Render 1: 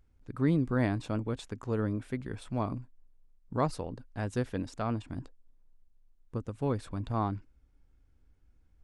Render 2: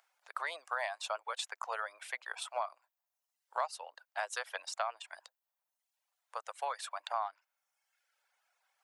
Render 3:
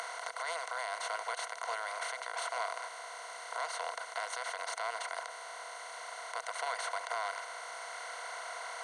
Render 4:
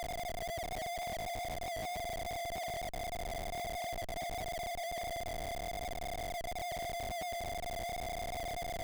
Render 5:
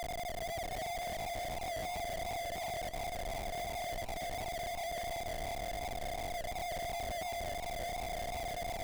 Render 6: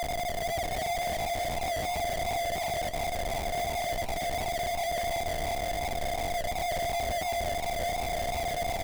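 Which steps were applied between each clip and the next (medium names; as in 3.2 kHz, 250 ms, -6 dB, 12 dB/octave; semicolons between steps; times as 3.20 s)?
reverb removal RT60 0.93 s; steep high-pass 640 Hz 48 dB/octave; compression 4:1, threshold -43 dBFS, peak gain reduction 14 dB; trim +10 dB
spectral levelling over time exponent 0.2; peak limiter -18 dBFS, peak gain reduction 8 dB; rippled EQ curve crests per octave 1.9, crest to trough 12 dB; trim -8 dB
two resonant band-passes 1.6 kHz, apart 2.4 oct; loudest bins only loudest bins 4; Schmitt trigger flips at -53 dBFS; trim +9 dB
modulated delay 323 ms, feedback 52%, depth 218 cents, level -10.5 dB
doubling 13 ms -11 dB; trim +7.5 dB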